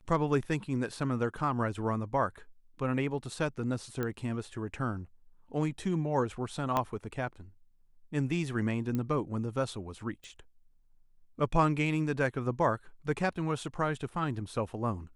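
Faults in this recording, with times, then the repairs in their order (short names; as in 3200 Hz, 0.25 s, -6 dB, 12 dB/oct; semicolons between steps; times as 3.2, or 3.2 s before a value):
4.03 pop -20 dBFS
6.77 pop -15 dBFS
8.95 pop -21 dBFS
10.24 pop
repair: de-click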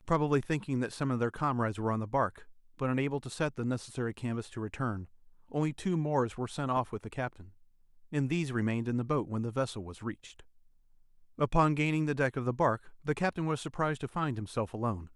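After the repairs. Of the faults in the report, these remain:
4.03 pop
6.77 pop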